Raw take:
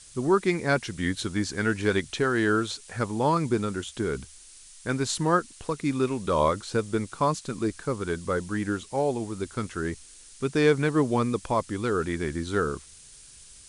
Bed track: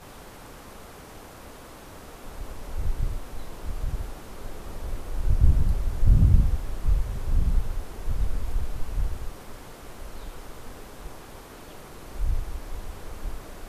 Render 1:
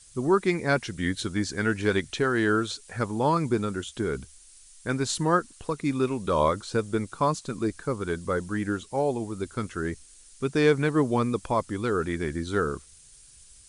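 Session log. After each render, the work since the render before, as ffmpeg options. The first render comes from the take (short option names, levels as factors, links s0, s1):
-af "afftdn=nr=6:nf=-50"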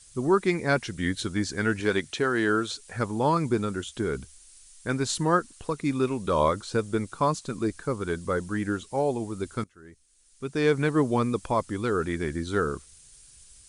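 -filter_complex "[0:a]asettb=1/sr,asplit=3[s0][s1][s2];[s0]atrim=end=1.804[s3];[s1]atrim=start=1.8:end=2.74,asetpts=PTS-STARTPTS,afade=t=in:d=0.004:c=qsin,afade=t=out:st=0.936:d=0.004:c=qsin,highpass=f=150:p=1[s4];[s2]atrim=start=2.736[s5];[s3][s4]acrossfade=d=0.004:c1=hsin:c2=qsin[s6];[s6][s5]acrossfade=d=0.004:c1=qsin:c2=hsin,asplit=2[s7][s8];[s7]atrim=end=9.64,asetpts=PTS-STARTPTS,afade=t=out:st=9.636:d=0.004:c=hsin:silence=0.0841395[s9];[s8]atrim=start=9.64,asetpts=PTS-STARTPTS,afade=t=in:d=1.18:c=qua:silence=0.0841395[s10];[s9][s10]concat=n=2:v=0:a=1"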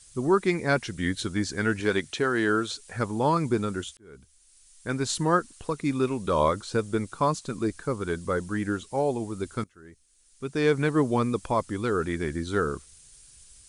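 -filter_complex "[0:a]asplit=2[s0][s1];[s0]atrim=end=3.97,asetpts=PTS-STARTPTS,afade=t=out:st=3.966:d=0.004:c=hsin[s2];[s1]atrim=start=3.97,asetpts=PTS-STARTPTS,afade=t=in:d=1.14[s3];[s2][s3]concat=n=2:v=0:a=1"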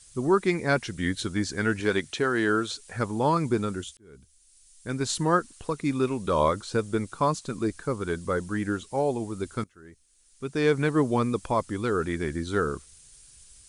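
-filter_complex "[0:a]asettb=1/sr,asplit=3[s0][s1][s2];[s0]atrim=end=3.754[s3];[s1]atrim=start=3.75:end=5.01,asetpts=PTS-STARTPTS,afade=t=in:d=0.004:c=qsin,afade=t=out:st=1.256:d=0.004:c=qsin,equalizer=f=1100:t=o:w=2.6:g=-5.5[s4];[s2]atrim=start=5.006[s5];[s3][s4]acrossfade=d=0.004:c1=hsin:c2=qsin[s6];[s6][s5]acrossfade=d=0.004:c1=qsin:c2=hsin"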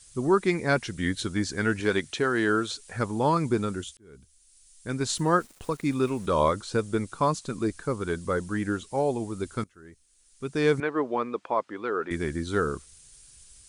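-filter_complex "[0:a]asettb=1/sr,asplit=3[s0][s1][s2];[s0]atrim=end=5.134[s3];[s1]atrim=start=5.13:end=6.26,asetpts=PTS-STARTPTS,afade=t=in:d=0.004:c=qsin,afade=t=out:st=1.126:d=0.004:c=qsin,aeval=exprs='val(0)*gte(abs(val(0)),0.00447)':c=same[s4];[s2]atrim=start=6.256[s5];[s3][s4]acrossfade=d=0.004:c1=hsin:c2=qsin[s6];[s6][s5]acrossfade=d=0.004:c1=qsin:c2=hsin,asettb=1/sr,asplit=3[s7][s8][s9];[s7]atrim=end=10.804[s10];[s8]atrim=start=10.8:end=12.11,asetpts=PTS-STARTPTS,afade=t=in:d=0.004:c=qsin,afade=t=out:st=1.306:d=0.004:c=qsin,highpass=390,lowpass=2400[s11];[s9]atrim=start=12.106[s12];[s10][s11]acrossfade=d=0.004:c1=hsin:c2=qsin[s13];[s13][s12]acrossfade=d=0.004:c1=qsin:c2=hsin"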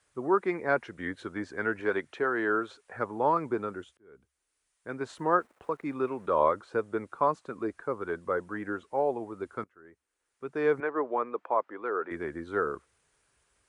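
-filter_complex "[0:a]highpass=55,acrossover=split=350 2000:gain=0.178 1 0.0708[s0][s1][s2];[s0][s1][s2]amix=inputs=3:normalize=0"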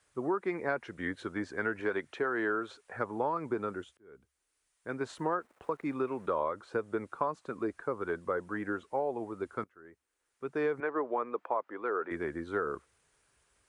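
-af "acompressor=threshold=0.0447:ratio=10"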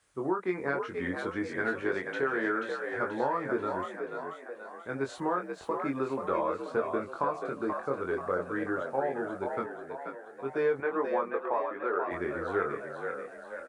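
-filter_complex "[0:a]asplit=2[s0][s1];[s1]adelay=22,volume=0.668[s2];[s0][s2]amix=inputs=2:normalize=0,asplit=2[s3][s4];[s4]asplit=6[s5][s6][s7][s8][s9][s10];[s5]adelay=484,afreqshift=59,volume=0.501[s11];[s6]adelay=968,afreqshift=118,volume=0.251[s12];[s7]adelay=1452,afreqshift=177,volume=0.126[s13];[s8]adelay=1936,afreqshift=236,volume=0.0624[s14];[s9]adelay=2420,afreqshift=295,volume=0.0313[s15];[s10]adelay=2904,afreqshift=354,volume=0.0157[s16];[s11][s12][s13][s14][s15][s16]amix=inputs=6:normalize=0[s17];[s3][s17]amix=inputs=2:normalize=0"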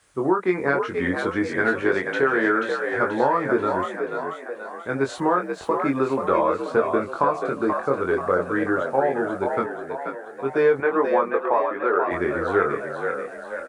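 -af "volume=2.99"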